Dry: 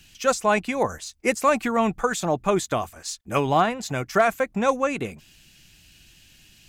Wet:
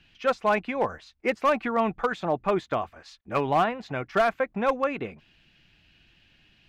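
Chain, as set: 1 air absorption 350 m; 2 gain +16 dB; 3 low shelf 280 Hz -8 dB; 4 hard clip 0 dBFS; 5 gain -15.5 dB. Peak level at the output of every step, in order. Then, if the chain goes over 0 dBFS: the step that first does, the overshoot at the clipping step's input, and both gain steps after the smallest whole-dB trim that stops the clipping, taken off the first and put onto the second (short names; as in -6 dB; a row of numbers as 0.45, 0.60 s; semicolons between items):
-10.0, +6.0, +5.5, 0.0, -15.5 dBFS; step 2, 5.5 dB; step 2 +10 dB, step 5 -9.5 dB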